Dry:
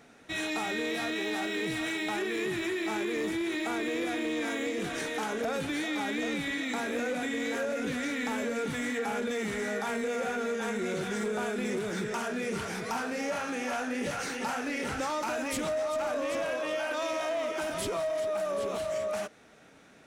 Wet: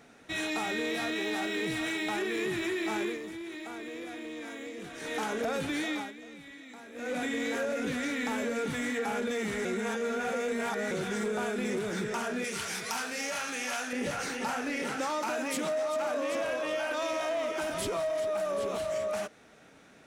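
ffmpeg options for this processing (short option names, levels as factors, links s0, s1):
-filter_complex "[0:a]asettb=1/sr,asplit=3[s0][s1][s2];[s0]atrim=end=12.444[s3];[s1]atrim=start=12.44:end=13.93,asetpts=PTS-STARTPTS,afade=t=in:d=0.004:c=qsin,afade=t=out:st=1.486:d=0.004:c=qsin,tiltshelf=f=1500:g=-7.5[s4];[s2]atrim=start=13.926[s5];[s3][s4]acrossfade=d=0.004:c1=hsin:c2=qsin[s6];[s6][s5]acrossfade=d=0.004:c1=qsin:c2=hsin,asettb=1/sr,asplit=3[s7][s8][s9];[s7]atrim=end=14.824[s10];[s8]atrim=start=14.82:end=16.45,asetpts=PTS-STARTPTS,afade=t=in:d=0.004:c=qsin,afade=t=out:st=1.626:d=0.004:c=qsin,highpass=f=160:w=0.5412,highpass=f=160:w=1.3066[s11];[s9]atrim=start=16.446[s12];[s10][s11]acrossfade=d=0.004:c1=hsin:c2=qsin[s13];[s13][s12]acrossfade=d=0.004:c1=qsin:c2=hsin,asplit=7[s14][s15][s16][s17][s18][s19][s20];[s14]atrim=end=3.19,asetpts=PTS-STARTPTS,afade=t=out:st=3.07:d=0.12:silence=0.354813[s21];[s15]atrim=start=3.19:end=5,asetpts=PTS-STARTPTS,volume=0.355[s22];[s16]atrim=start=5:end=6.13,asetpts=PTS-STARTPTS,afade=t=in:d=0.12:silence=0.354813,afade=t=out:st=0.91:d=0.22:silence=0.16788[s23];[s17]atrim=start=6.13:end=6.94,asetpts=PTS-STARTPTS,volume=0.168[s24];[s18]atrim=start=6.94:end=9.652,asetpts=PTS-STARTPTS,afade=t=in:d=0.22:silence=0.16788[s25];[s19]atrim=start=9.648:end=10.912,asetpts=PTS-STARTPTS,areverse[s26];[s20]atrim=start=10.908[s27];[s21][s22][s23][s24][s25]concat=n=5:v=0:a=1[s28];[s28][s26]acrossfade=d=0.004:c1=hsin:c2=hsin[s29];[s29][s27]acrossfade=d=0.004:c1=hsin:c2=hsin"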